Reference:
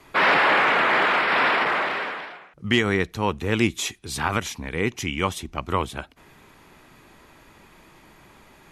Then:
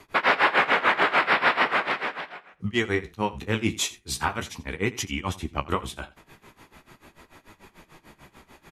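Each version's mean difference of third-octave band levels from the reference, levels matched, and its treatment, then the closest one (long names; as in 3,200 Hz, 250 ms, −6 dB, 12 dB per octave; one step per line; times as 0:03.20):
4.0 dB: brickwall limiter −13.5 dBFS, peak gain reduction 5.5 dB
amplitude tremolo 6.8 Hz, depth 99%
flanger 0.4 Hz, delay 9.5 ms, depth 9.1 ms, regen −36%
on a send: single-tap delay 84 ms −19 dB
on the sum: level +7 dB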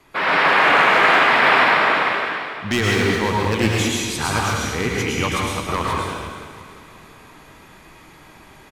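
6.5 dB: automatic gain control gain up to 4 dB
wave folding −9.5 dBFS
on a send: repeating echo 343 ms, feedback 49%, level −15 dB
on the sum: dense smooth reverb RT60 1.4 s, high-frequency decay 1×, pre-delay 90 ms, DRR −3.5 dB
level −3 dB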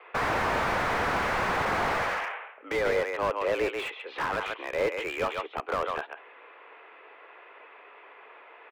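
9.0 dB: on a send: single-tap delay 138 ms −10.5 dB
on the sum: single-sideband voice off tune +78 Hz 360–2,800 Hz
brickwall limiter −16 dBFS, peak gain reduction 7.5 dB
slew-rate limiting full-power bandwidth 43 Hz
level +3 dB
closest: first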